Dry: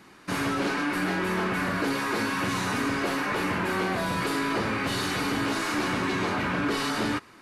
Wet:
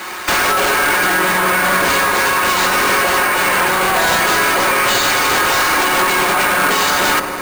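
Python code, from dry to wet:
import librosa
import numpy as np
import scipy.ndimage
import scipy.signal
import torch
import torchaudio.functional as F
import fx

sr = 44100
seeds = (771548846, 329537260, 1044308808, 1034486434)

p1 = scipy.signal.sosfilt(scipy.signal.butter(2, 610.0, 'highpass', fs=sr, output='sos'), x)
p2 = p1 + 0.52 * np.pad(p1, (int(5.5 * sr / 1000.0), 0))[:len(p1)]
p3 = fx.over_compress(p2, sr, threshold_db=-34.0, ratio=-1.0)
p4 = fx.fold_sine(p3, sr, drive_db=11, ceiling_db=-18.0)
p5 = p4 + fx.echo_wet_lowpass(p4, sr, ms=98, feedback_pct=80, hz=830.0, wet_db=-6, dry=0)
p6 = fx.sample_hold(p5, sr, seeds[0], rate_hz=11000.0, jitter_pct=0)
y = F.gain(torch.from_numpy(p6), 7.0).numpy()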